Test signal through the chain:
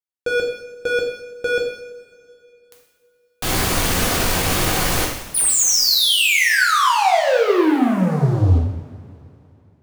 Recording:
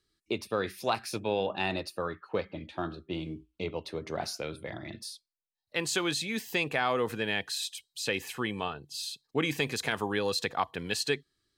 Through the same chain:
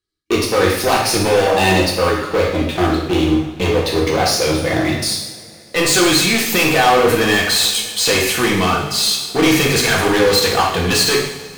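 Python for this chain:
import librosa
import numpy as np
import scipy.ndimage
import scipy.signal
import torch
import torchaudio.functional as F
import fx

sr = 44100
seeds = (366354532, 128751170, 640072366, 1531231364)

y = fx.leveller(x, sr, passes=5)
y = fx.rev_double_slope(y, sr, seeds[0], early_s=0.8, late_s=3.1, knee_db=-18, drr_db=-2.5)
y = y * librosa.db_to_amplitude(1.5)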